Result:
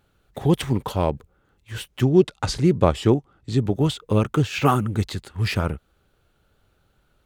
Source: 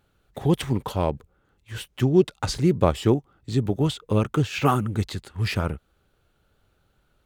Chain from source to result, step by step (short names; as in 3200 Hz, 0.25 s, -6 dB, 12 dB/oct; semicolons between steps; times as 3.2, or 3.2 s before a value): 2.05–3.75 Bessel low-pass 10000 Hz, order 2; gain +2 dB